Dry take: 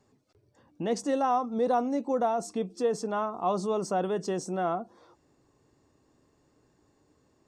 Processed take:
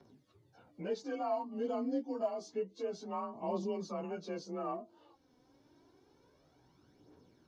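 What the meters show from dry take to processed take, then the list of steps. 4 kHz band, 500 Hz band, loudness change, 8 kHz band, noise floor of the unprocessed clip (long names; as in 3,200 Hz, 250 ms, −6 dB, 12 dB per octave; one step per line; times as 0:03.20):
−9.0 dB, −8.5 dB, −9.5 dB, −15.0 dB, −69 dBFS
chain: partials spread apart or drawn together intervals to 92%
phase shifter 0.28 Hz, delay 4.1 ms, feedback 51%
multiband upward and downward compressor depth 40%
level −9 dB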